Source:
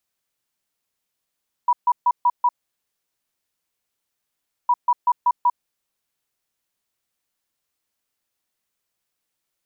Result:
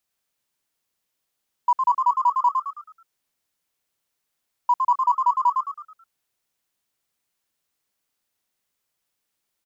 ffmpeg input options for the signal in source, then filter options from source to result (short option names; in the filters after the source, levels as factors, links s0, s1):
-f lavfi -i "aevalsrc='0.224*sin(2*PI*974*t)*clip(min(mod(mod(t,3.01),0.19),0.05-mod(mod(t,3.01),0.19))/0.005,0,1)*lt(mod(t,3.01),0.95)':d=6.02:s=44100"
-filter_complex "[0:a]aeval=exprs='0.237*(cos(1*acos(clip(val(0)/0.237,-1,1)))-cos(1*PI/2))+0.00237*(cos(7*acos(clip(val(0)/0.237,-1,1)))-cos(7*PI/2))':c=same,asplit=2[s0][s1];[s1]asplit=5[s2][s3][s4][s5][s6];[s2]adelay=108,afreqshift=74,volume=0.596[s7];[s3]adelay=216,afreqshift=148,volume=0.237[s8];[s4]adelay=324,afreqshift=222,volume=0.0955[s9];[s5]adelay=432,afreqshift=296,volume=0.038[s10];[s6]adelay=540,afreqshift=370,volume=0.0153[s11];[s7][s8][s9][s10][s11]amix=inputs=5:normalize=0[s12];[s0][s12]amix=inputs=2:normalize=0"